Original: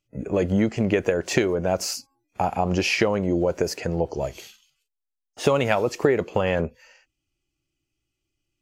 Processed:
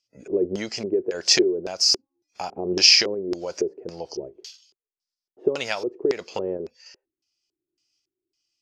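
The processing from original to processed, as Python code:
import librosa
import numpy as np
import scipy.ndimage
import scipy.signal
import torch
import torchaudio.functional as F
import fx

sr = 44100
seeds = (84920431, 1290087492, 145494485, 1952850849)

y = fx.riaa(x, sr, side='recording')
y = fx.filter_lfo_lowpass(y, sr, shape='square', hz=1.8, low_hz=380.0, high_hz=5100.0, q=6.3)
y = fx.tremolo_random(y, sr, seeds[0], hz=3.5, depth_pct=55)
y = y * librosa.db_to_amplitude(-3.0)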